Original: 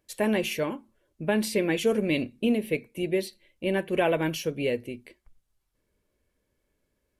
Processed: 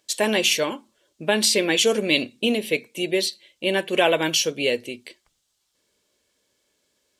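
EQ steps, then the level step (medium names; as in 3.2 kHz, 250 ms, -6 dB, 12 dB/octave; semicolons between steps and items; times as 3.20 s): high-pass 460 Hz 6 dB/octave; high-order bell 5 kHz +9.5 dB; +7.0 dB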